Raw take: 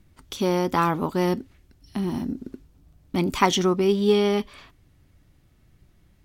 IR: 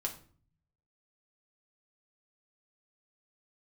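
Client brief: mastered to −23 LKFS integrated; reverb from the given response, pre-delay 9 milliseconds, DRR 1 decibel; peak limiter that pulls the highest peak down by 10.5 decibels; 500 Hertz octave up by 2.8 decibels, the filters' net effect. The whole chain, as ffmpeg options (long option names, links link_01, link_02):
-filter_complex "[0:a]equalizer=frequency=500:width_type=o:gain=4,alimiter=limit=-14.5dB:level=0:latency=1,asplit=2[link_01][link_02];[1:a]atrim=start_sample=2205,adelay=9[link_03];[link_02][link_03]afir=irnorm=-1:irlink=0,volume=-2.5dB[link_04];[link_01][link_04]amix=inputs=2:normalize=0,volume=-1dB"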